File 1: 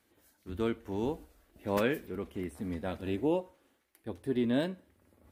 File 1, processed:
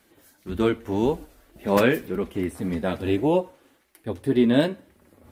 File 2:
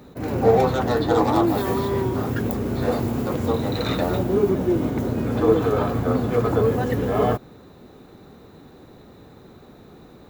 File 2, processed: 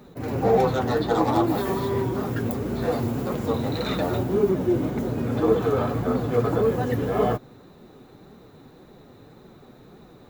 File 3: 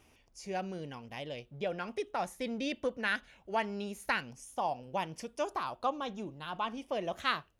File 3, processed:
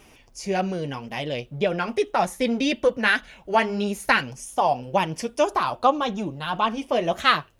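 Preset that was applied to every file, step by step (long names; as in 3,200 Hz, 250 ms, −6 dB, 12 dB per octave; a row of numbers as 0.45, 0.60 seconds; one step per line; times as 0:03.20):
flanger 1.8 Hz, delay 4.5 ms, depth 4 ms, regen −33%
loudness normalisation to −24 LKFS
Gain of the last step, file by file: +14.0, +1.5, +16.0 decibels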